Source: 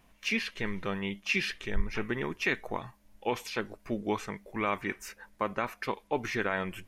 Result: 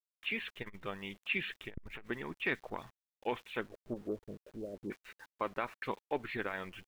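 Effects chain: steep low-pass 3.8 kHz 96 dB/octave, from 3.71 s 640 Hz, from 4.90 s 4.2 kHz; harmonic-percussive split harmonic -9 dB; small samples zeroed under -52.5 dBFS; transformer saturation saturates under 400 Hz; trim -3.5 dB

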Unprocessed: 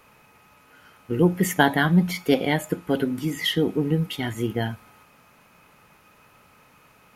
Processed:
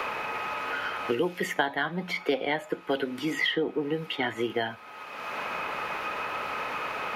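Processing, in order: three-band isolator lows -18 dB, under 350 Hz, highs -18 dB, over 4.5 kHz; three bands compressed up and down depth 100%

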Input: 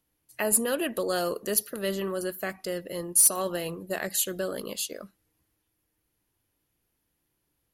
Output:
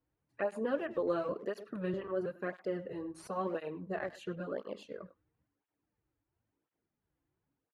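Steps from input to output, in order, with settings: pitch shift switched off and on -1 st, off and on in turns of 322 ms; low-pass 1.5 kHz 12 dB/octave; speakerphone echo 100 ms, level -15 dB; cancelling through-zero flanger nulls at 0.97 Hz, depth 5.4 ms; trim -1 dB

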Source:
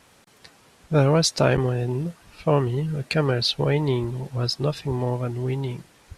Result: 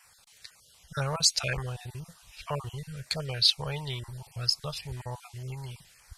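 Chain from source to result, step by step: random holes in the spectrogram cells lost 21%; amplifier tone stack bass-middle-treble 10-0-10; LFO notch saw down 2 Hz 750–4000 Hz; trim +3.5 dB

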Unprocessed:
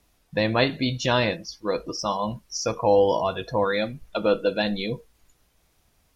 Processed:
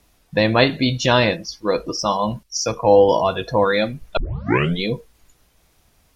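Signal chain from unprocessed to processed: 2.43–3.09 s: three bands expanded up and down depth 40%; 4.17 s: tape start 0.65 s; trim +6 dB

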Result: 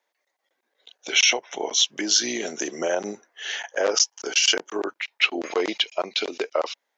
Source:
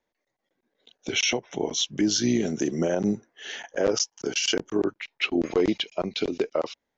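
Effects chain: high-pass 650 Hz 12 dB/octave; trim +6.5 dB

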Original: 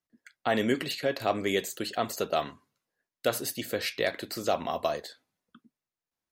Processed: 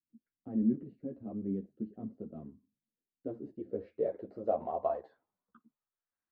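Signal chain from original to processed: low-pass sweep 240 Hz -> 1.6 kHz, 2.85–6.15 s; three-phase chorus; trim -5 dB

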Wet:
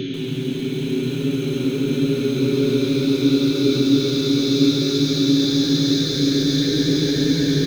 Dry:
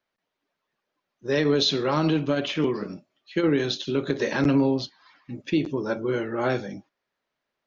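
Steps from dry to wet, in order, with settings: FFT filter 210 Hz 0 dB, 1 kHz -18 dB, 2.2 kHz -3 dB; bands offset in time lows, highs 310 ms, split 3.1 kHz; FDN reverb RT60 0.59 s, low-frequency decay 0.85×, high-frequency decay 0.55×, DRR 6.5 dB; Paulstretch 32×, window 0.25 s, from 3.86 s; bit-crushed delay 137 ms, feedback 80%, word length 7-bit, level -12 dB; trim +8.5 dB

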